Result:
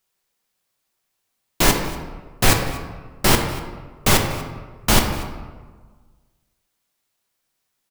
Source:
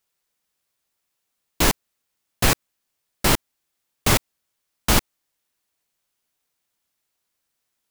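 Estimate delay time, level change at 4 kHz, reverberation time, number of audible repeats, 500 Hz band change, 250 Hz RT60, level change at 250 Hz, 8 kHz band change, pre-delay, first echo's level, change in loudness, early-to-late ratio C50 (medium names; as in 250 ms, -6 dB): 240 ms, +3.0 dB, 1.5 s, 1, +4.0 dB, 1.6 s, +3.5 dB, +2.5 dB, 5 ms, -19.5 dB, +2.0 dB, 5.5 dB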